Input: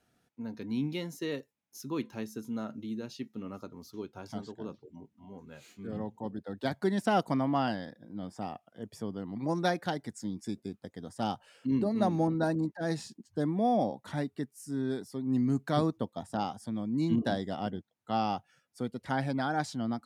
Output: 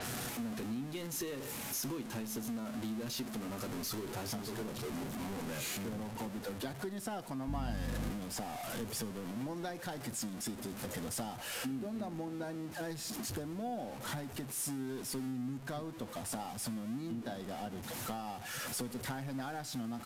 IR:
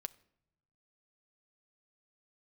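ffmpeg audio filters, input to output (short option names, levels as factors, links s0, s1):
-filter_complex "[0:a]aeval=exprs='val(0)+0.5*0.0224*sgn(val(0))':c=same,acompressor=threshold=0.0158:ratio=12,asettb=1/sr,asplit=3[s0][s1][s2];[s0]atrim=end=7.484[s3];[s1]atrim=start=7.48:end=8.1,asetpts=PTS-STARTPTS,afade=t=in:d=0.004:c=qsin,afade=t=out:st=0.616:d=0.004:c=qsin,aeval=exprs='val(0)+0.02*(sin(2*PI*50*n/s)+sin(2*PI*2*50*n/s)/2+sin(2*PI*3*50*n/s)/3+sin(2*PI*4*50*n/s)/4+sin(2*PI*5*50*n/s)/5)':c=same[s4];[s2]atrim=start=8.096[s5];[s3][s4]acrossfade=d=0.004:c1=hsin:c2=qsin[s6];[s6][s5]acrossfade=d=0.004:c1=qsin:c2=hsin[s7];[1:a]atrim=start_sample=2205,asetrate=31311,aresample=44100[s8];[s7][s8]afir=irnorm=-1:irlink=0,aresample=32000,aresample=44100,adynamicequalizer=threshold=0.00178:dfrequency=7500:dqfactor=0.7:tfrequency=7500:tqfactor=0.7:attack=5:release=100:ratio=0.375:range=2.5:mode=boostabove:tftype=highshelf"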